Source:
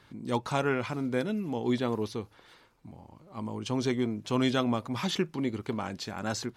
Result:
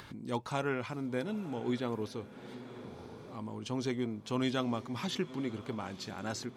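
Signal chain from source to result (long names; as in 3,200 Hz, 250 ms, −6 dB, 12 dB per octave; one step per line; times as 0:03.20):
feedback delay with all-pass diffusion 958 ms, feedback 41%, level −16 dB
upward compression, threshold −34 dBFS
level −5.5 dB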